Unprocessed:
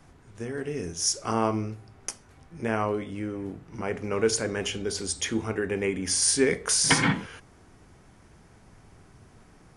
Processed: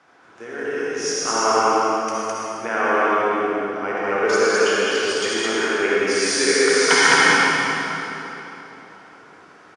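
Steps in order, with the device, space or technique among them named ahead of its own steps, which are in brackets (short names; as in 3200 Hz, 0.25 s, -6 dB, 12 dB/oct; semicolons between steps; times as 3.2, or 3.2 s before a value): station announcement (BPF 420–4800 Hz; bell 1400 Hz +7.5 dB 0.37 oct; loudspeakers at several distances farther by 11 m -10 dB, 72 m -1 dB; reverb RT60 3.4 s, pre-delay 52 ms, DRR -6 dB); gain +2 dB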